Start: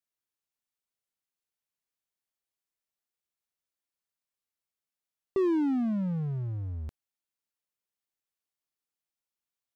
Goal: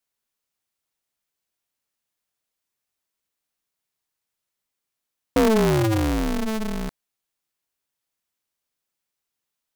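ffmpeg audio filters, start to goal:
ffmpeg -i in.wav -af "aeval=exprs='val(0)*sgn(sin(2*PI*110*n/s))':channel_layout=same,volume=8dB" out.wav

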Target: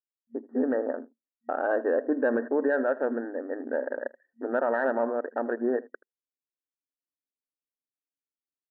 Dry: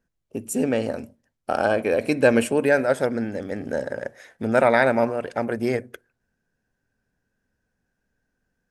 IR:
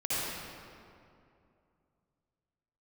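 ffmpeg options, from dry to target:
-af "anlmdn=6.31,afftfilt=real='re*between(b*sr/4096,230,1900)':imag='im*between(b*sr/4096,230,1900)':win_size=4096:overlap=0.75,alimiter=limit=-13.5dB:level=0:latency=1:release=61,acontrast=32,aecho=1:1:79:0.0891,volume=-7.5dB"

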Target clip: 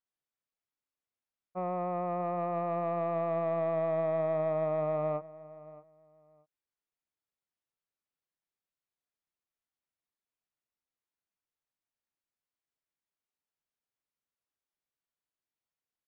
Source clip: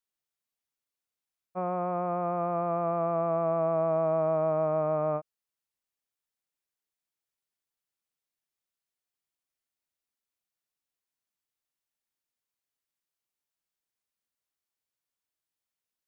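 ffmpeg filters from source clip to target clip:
ffmpeg -i in.wav -filter_complex "[0:a]aemphasis=mode=reproduction:type=75fm,asoftclip=type=tanh:threshold=-20dB,asplit=2[link_01][link_02];[link_02]adelay=623,lowpass=frequency=2100:poles=1,volume=-18dB,asplit=2[link_03][link_04];[link_04]adelay=623,lowpass=frequency=2100:poles=1,volume=0.21[link_05];[link_03][link_05]amix=inputs=2:normalize=0[link_06];[link_01][link_06]amix=inputs=2:normalize=0,volume=-2.5dB" out.wav

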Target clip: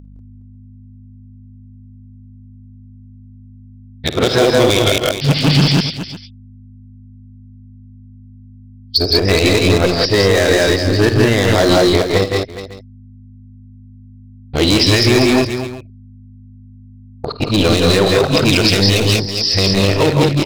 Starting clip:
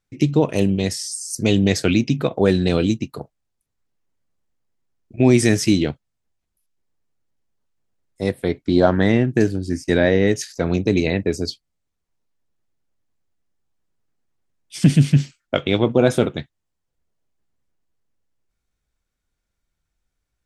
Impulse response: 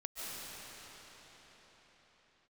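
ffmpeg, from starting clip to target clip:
-filter_complex "[0:a]areverse,aresample=11025,aresample=44100,agate=range=-50dB:threshold=-38dB:ratio=16:detection=peak,asubboost=boost=5:cutoff=76,asplit=2[link_01][link_02];[link_02]aeval=exprs='0.106*(abs(mod(val(0)/0.106+3,4)-2)-1)':channel_layout=same,volume=-4.5dB[link_03];[link_01][link_03]amix=inputs=2:normalize=0,aeval=exprs='val(0)+0.0112*(sin(2*PI*50*n/s)+sin(2*PI*2*50*n/s)/2+sin(2*PI*3*50*n/s)/3+sin(2*PI*4*50*n/s)/4+sin(2*PI*5*50*n/s)/5)':channel_layout=same,bass=frequency=250:gain=-6,treble=frequency=4000:gain=13,asplit=2[link_04][link_05];[link_05]aecho=0:1:51|78|163|191|414|551:0.211|0.141|0.531|0.631|0.224|0.1[link_06];[link_04][link_06]amix=inputs=2:normalize=0,alimiter=level_in=8dB:limit=-1dB:release=50:level=0:latency=1,volume=-1dB"

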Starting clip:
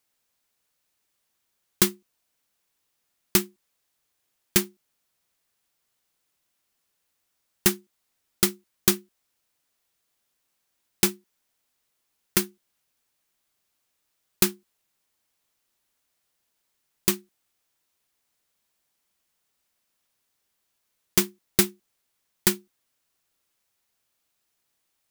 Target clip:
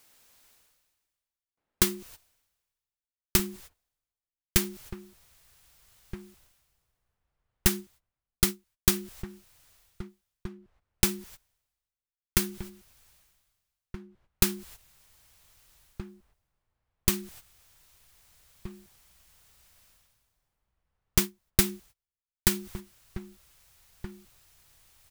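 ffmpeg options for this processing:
ffmpeg -i in.wav -filter_complex "[0:a]agate=range=-27dB:threshold=-55dB:ratio=16:detection=peak,asubboost=boost=9:cutoff=87,areverse,acompressor=mode=upward:threshold=-24dB:ratio=2.5,areverse,asplit=2[link_01][link_02];[link_02]adelay=1574,volume=-12dB,highshelf=frequency=4000:gain=-35.4[link_03];[link_01][link_03]amix=inputs=2:normalize=0,volume=-3dB" out.wav

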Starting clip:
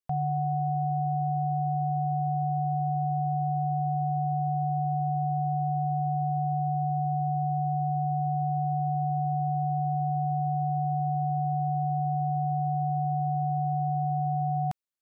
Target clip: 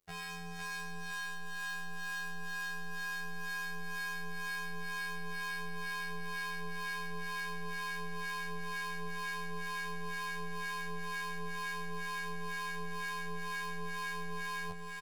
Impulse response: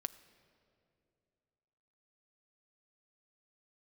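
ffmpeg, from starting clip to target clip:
-filter_complex "[0:a]asubboost=boost=11:cutoff=59,aeval=exprs='(tanh(398*val(0)+0.2)-tanh(0.2))/398':channel_layout=same,aecho=1:1:509|1018|1527|2036|2545|3054|3563:0.631|0.328|0.171|0.0887|0.0461|0.024|0.0125,acrossover=split=760[link_01][link_02];[link_01]aeval=exprs='val(0)*(1-0.7/2+0.7/2*cos(2*PI*2.1*n/s))':channel_layout=same[link_03];[link_02]aeval=exprs='val(0)*(1-0.7/2-0.7/2*cos(2*PI*2.1*n/s))':channel_layout=same[link_04];[link_03][link_04]amix=inputs=2:normalize=0,asplit=2[link_05][link_06];[1:a]atrim=start_sample=2205[link_07];[link_06][link_07]afir=irnorm=-1:irlink=0,volume=-4.5dB[link_08];[link_05][link_08]amix=inputs=2:normalize=0,afftfilt=real='hypot(re,im)*cos(PI*b)':imag='0':win_size=2048:overlap=0.75,volume=15.5dB"

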